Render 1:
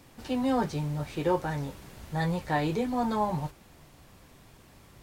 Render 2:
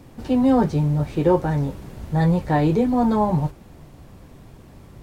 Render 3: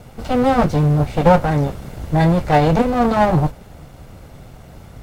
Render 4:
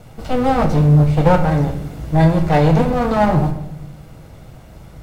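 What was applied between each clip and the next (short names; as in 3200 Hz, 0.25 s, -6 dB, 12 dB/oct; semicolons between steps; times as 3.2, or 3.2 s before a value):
tilt shelf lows +6 dB, about 860 Hz; gain +6 dB
minimum comb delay 1.4 ms; gain +6.5 dB
shoebox room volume 240 m³, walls mixed, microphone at 0.61 m; gain -2 dB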